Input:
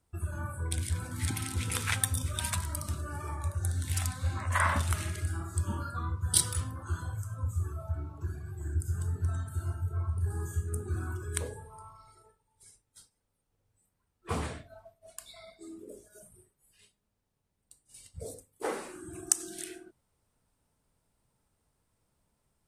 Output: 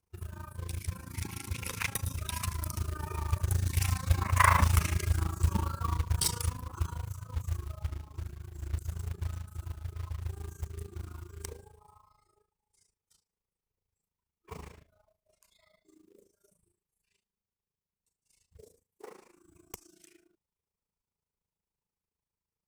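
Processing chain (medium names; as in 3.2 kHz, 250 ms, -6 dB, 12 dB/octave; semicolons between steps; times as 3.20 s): one-sided wavefolder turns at -17 dBFS; Doppler pass-by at 4.62 s, 15 m/s, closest 21 m; rippled EQ curve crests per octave 0.8, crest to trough 7 dB; AM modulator 27 Hz, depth 75%; short-mantissa float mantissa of 2-bit; trim +7 dB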